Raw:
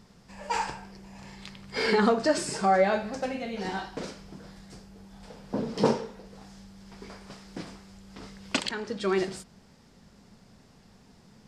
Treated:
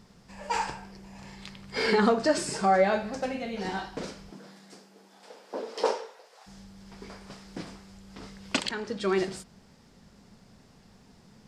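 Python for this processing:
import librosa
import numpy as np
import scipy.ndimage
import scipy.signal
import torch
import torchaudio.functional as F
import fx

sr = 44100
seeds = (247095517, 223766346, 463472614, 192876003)

y = fx.highpass(x, sr, hz=fx.line((4.3, 170.0), (6.46, 620.0)), slope=24, at=(4.3, 6.46), fade=0.02)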